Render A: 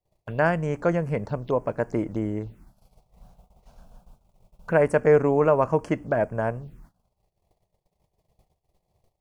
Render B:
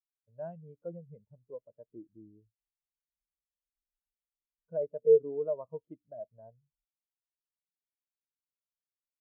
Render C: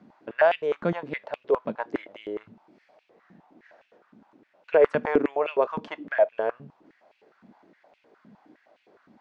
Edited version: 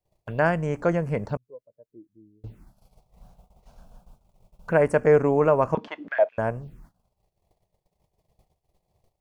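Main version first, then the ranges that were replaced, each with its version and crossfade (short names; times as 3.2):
A
1.37–2.44 from B
5.75–6.38 from C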